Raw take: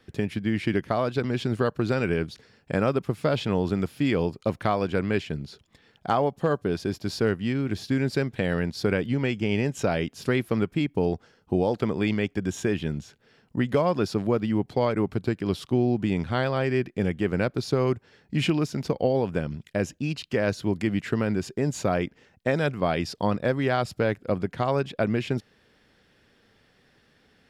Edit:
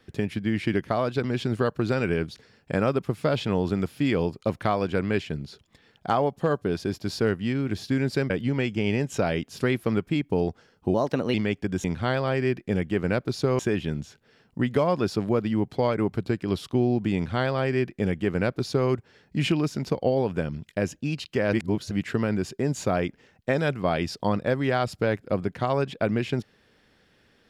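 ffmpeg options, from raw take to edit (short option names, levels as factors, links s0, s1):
-filter_complex "[0:a]asplit=8[s0][s1][s2][s3][s4][s5][s6][s7];[s0]atrim=end=8.302[s8];[s1]atrim=start=8.948:end=11.594[s9];[s2]atrim=start=11.59:end=12.07,asetpts=PTS-STARTPTS,asetrate=52920,aresample=44100[s10];[s3]atrim=start=12.066:end=12.572[s11];[s4]atrim=start=16.128:end=17.882[s12];[s5]atrim=start=12.568:end=20.512[s13];[s6]atrim=start=20.508:end=20.892,asetpts=PTS-STARTPTS,areverse[s14];[s7]atrim=start=20.888[s15];[s8][s9]acrossfade=d=0.004:c1=hsin:c2=hsin[s16];[s16][s10]acrossfade=d=0.004:c1=hsin:c2=hsin[s17];[s17][s11]acrossfade=d=0.004:c1=hsin:c2=hsin[s18];[s18][s12]acrossfade=d=0.004:c1=hsin:c2=hsin[s19];[s19][s13]acrossfade=d=0.004:c1=hsin:c2=hsin[s20];[s20][s14]acrossfade=d=0.004:c1=hsin:c2=hsin[s21];[s21][s15]acrossfade=d=0.004:c1=hsin:c2=hsin"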